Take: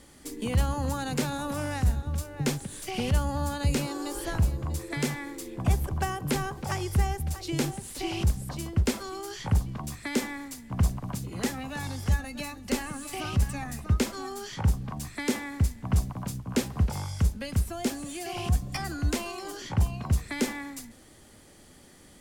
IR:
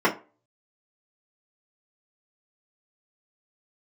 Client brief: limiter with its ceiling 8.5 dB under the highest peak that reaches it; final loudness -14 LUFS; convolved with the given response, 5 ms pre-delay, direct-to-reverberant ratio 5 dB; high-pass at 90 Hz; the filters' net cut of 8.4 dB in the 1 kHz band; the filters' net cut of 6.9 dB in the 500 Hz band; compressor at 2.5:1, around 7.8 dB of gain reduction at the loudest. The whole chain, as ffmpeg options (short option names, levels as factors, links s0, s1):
-filter_complex "[0:a]highpass=90,equalizer=f=500:t=o:g=-7.5,equalizer=f=1000:t=o:g=-8.5,acompressor=threshold=0.02:ratio=2.5,alimiter=level_in=1.88:limit=0.0631:level=0:latency=1,volume=0.531,asplit=2[s0][s1];[1:a]atrim=start_sample=2205,adelay=5[s2];[s1][s2]afir=irnorm=-1:irlink=0,volume=0.075[s3];[s0][s3]amix=inputs=2:normalize=0,volume=17.8"